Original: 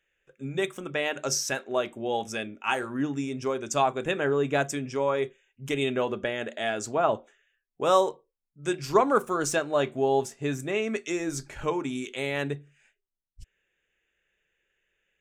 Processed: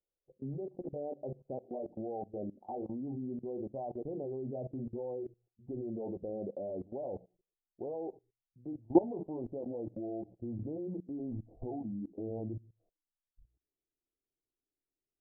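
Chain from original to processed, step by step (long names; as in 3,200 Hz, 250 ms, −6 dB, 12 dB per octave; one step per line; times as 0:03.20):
pitch glide at a constant tempo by −5 semitones starting unshifted
Butterworth low-pass 790 Hz 72 dB per octave
mains-hum notches 60/120/180 Hz
output level in coarse steps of 20 dB
level +1.5 dB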